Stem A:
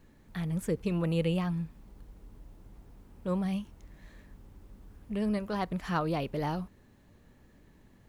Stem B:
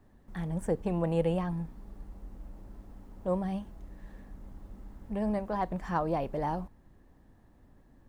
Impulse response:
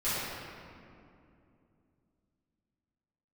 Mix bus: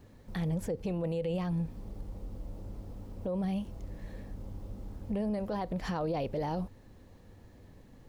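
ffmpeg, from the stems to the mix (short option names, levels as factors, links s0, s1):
-filter_complex "[0:a]volume=0.944[s0];[1:a]equalizer=f=100:t=o:w=0.33:g=10,equalizer=f=500:t=o:w=0.33:g=9,equalizer=f=1600:t=o:w=0.33:g=-11,acompressor=threshold=0.0141:ratio=2,volume=1.19,asplit=2[s1][s2];[s2]apad=whole_len=356553[s3];[s0][s3]sidechaincompress=threshold=0.0141:ratio=8:attack=16:release=130[s4];[s4][s1]amix=inputs=2:normalize=0,equalizer=f=4800:w=1.5:g=4,alimiter=level_in=1.19:limit=0.0631:level=0:latency=1:release=26,volume=0.841"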